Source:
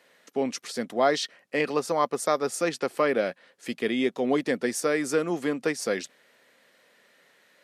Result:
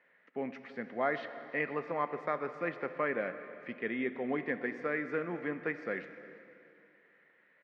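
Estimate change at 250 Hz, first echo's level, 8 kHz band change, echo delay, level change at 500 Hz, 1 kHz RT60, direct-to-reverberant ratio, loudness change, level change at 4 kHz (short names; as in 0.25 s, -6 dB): -9.5 dB, -22.0 dB, under -40 dB, 0.339 s, -10.0 dB, 2.8 s, 9.5 dB, -9.0 dB, -21.0 dB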